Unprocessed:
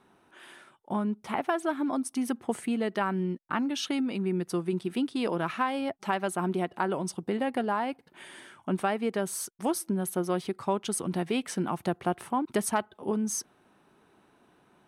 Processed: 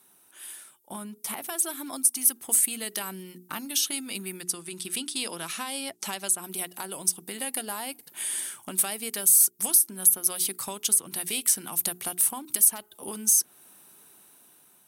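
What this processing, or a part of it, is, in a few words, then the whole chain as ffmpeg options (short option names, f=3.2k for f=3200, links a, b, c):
FM broadcast chain: -filter_complex "[0:a]highpass=79,dynaudnorm=f=610:g=5:m=7dB,acrossover=split=1100|2900[a][b][c];[a]acompressor=threshold=-30dB:ratio=4[d];[b]acompressor=threshold=-39dB:ratio=4[e];[c]acompressor=threshold=-33dB:ratio=4[f];[d][e][f]amix=inputs=3:normalize=0,aemphasis=mode=production:type=75fm,alimiter=limit=-15dB:level=0:latency=1:release=348,asoftclip=type=hard:threshold=-18dB,lowpass=f=15k:w=0.5412,lowpass=f=15k:w=1.3066,aemphasis=mode=production:type=75fm,asettb=1/sr,asplit=3[g][h][i];[g]atrim=end=4.414[j];[h]atrim=start=4.41:end=6.44,asetpts=PTS-STARTPTS,afade=t=in:d=0.004:c=qsin,afade=t=out:st=2.026:d=0.004:c=qsin,lowpass=8.8k[k];[i]atrim=start=6.436[l];[j][k]acrossfade=d=0.004:c1=hsin:c2=qsin[m];[m][l]acrossfade=d=0.004:c1=qsin:c2=hsin,bandreject=f=60:t=h:w=6,bandreject=f=120:t=h:w=6,bandreject=f=180:t=h:w=6,bandreject=f=240:t=h:w=6,bandreject=f=300:t=h:w=6,bandreject=f=360:t=h:w=6,bandreject=f=420:t=h:w=6,volume=-6dB"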